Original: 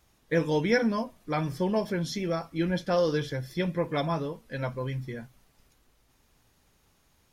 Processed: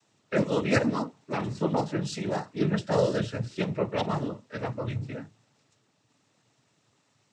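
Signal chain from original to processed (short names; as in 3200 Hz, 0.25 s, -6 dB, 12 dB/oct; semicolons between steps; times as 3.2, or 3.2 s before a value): octaver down 2 oct, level +2 dB; noise vocoder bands 12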